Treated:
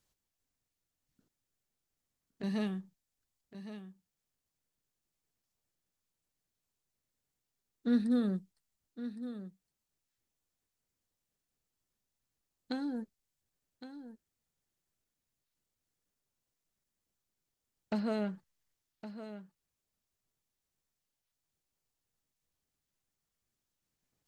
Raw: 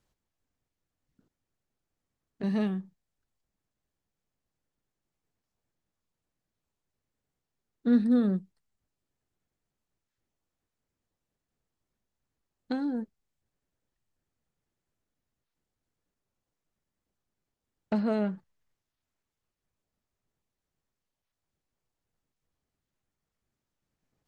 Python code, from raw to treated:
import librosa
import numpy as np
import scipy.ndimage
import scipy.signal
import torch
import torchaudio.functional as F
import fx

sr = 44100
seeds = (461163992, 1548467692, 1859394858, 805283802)

p1 = fx.high_shelf(x, sr, hz=2900.0, db=10.5)
p2 = p1 + fx.echo_single(p1, sr, ms=1113, db=-12.0, dry=0)
y = p2 * 10.0 ** (-6.0 / 20.0)